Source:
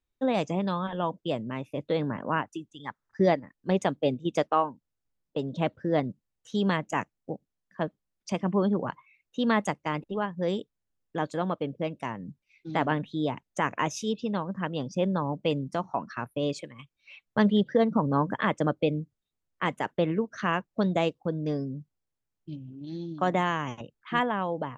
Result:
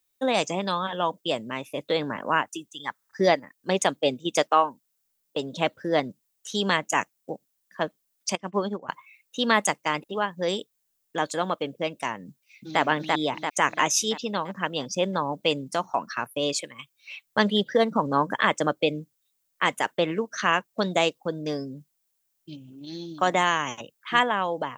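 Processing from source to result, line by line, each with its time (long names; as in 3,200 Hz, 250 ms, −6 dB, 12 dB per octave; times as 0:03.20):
0:08.35–0:08.89: expander for the loud parts 2.5 to 1, over −34 dBFS
0:12.28–0:12.81: delay throw 340 ms, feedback 55%, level −1.5 dB
whole clip: RIAA equalisation recording; level +5 dB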